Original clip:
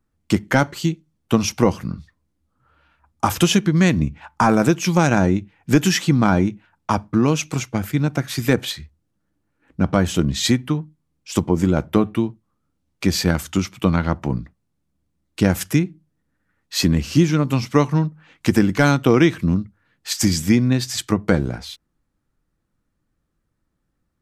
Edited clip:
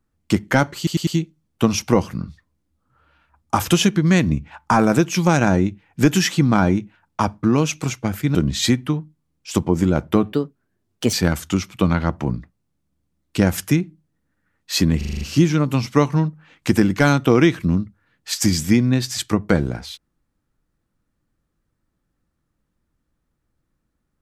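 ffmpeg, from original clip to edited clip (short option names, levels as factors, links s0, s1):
-filter_complex "[0:a]asplit=13[s0][s1][s2][s3][s4][s5][s6][s7][s8][s9][s10][s11][s12];[s0]atrim=end=0.872[s13];[s1]atrim=start=0.768:end=0.872[s14];[s2]atrim=start=0.768:end=0.872[s15];[s3]atrim=start=0.768:end=8.052[s16];[s4]atrim=start=10.158:end=12.134[s17];[s5]atrim=start=12.13:end=13.16,asetpts=PTS-STARTPTS,asetrate=56007,aresample=44100,atrim=end_sample=35766,asetpts=PTS-STARTPTS[s18];[s6]atrim=start=13.156:end=17.042[s19];[s7]atrim=start=16.998:end=17.042[s20];[s8]atrim=start=16.998:end=17.042[s21];[s9]atrim=start=16.998:end=17.042[s22];[s10]atrim=start=16.998:end=17.042[s23];[s11]atrim=start=16.998:end=17.042[s24];[s12]atrim=start=16.998[s25];[s13][s14]acrossfade=d=0.004:c1=hsin:c2=hsin[s26];[s26][s15]acrossfade=d=0.004:c1=hsin:c2=hsin[s27];[s27][s16]acrossfade=d=0.004:c1=hsin:c2=hsin[s28];[s28][s17]acrossfade=d=0.004:c1=hsin:c2=hsin[s29];[s29][s18]acrossfade=d=0.004:c1=hsin:c2=hsin[s30];[s30][s19]acrossfade=d=0.004:c1=hsin:c2=hsin[s31];[s31][s20]acrossfade=d=0.004:c1=hsin:c2=hsin[s32];[s32][s21]acrossfade=d=0.004:c1=hsin:c2=hsin[s33];[s33][s22]acrossfade=d=0.004:c1=hsin:c2=hsin[s34];[s34][s23]acrossfade=d=0.004:c1=hsin:c2=hsin[s35];[s35][s24]acrossfade=d=0.004:c1=hsin:c2=hsin[s36];[s36][s25]acrossfade=d=0.004:c1=hsin:c2=hsin"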